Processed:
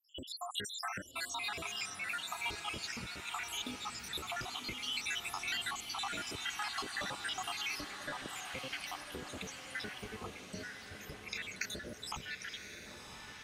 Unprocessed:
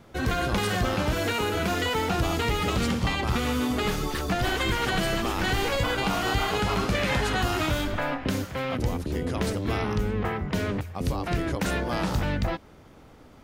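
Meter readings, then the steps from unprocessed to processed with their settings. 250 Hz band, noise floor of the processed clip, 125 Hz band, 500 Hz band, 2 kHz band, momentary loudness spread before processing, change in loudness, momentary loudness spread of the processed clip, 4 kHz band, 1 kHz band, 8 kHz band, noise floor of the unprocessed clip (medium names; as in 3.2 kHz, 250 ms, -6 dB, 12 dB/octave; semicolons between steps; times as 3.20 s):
-22.5 dB, -51 dBFS, -26.0 dB, -21.5 dB, -10.0 dB, 4 LU, -13.0 dB, 8 LU, -7.5 dB, -14.0 dB, -5.5 dB, -51 dBFS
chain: random holes in the spectrogram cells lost 84%; dynamic bell 550 Hz, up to -5 dB, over -49 dBFS, Q 2.2; low-pass 8.8 kHz 12 dB/octave; compression 3:1, threshold -38 dBFS, peak gain reduction 12.5 dB; tilt EQ +3 dB/octave; echo that smears into a reverb 1078 ms, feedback 55%, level -7 dB; trim -1 dB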